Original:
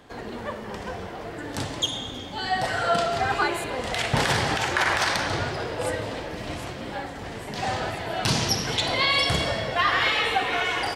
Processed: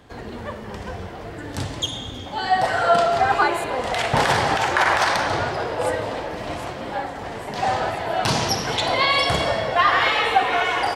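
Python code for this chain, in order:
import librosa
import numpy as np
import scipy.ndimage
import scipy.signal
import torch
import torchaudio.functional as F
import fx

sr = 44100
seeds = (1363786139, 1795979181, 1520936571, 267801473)

y = fx.peak_eq(x, sr, hz=fx.steps((0.0, 71.0), (2.26, 820.0)), db=7.5, octaves=1.9)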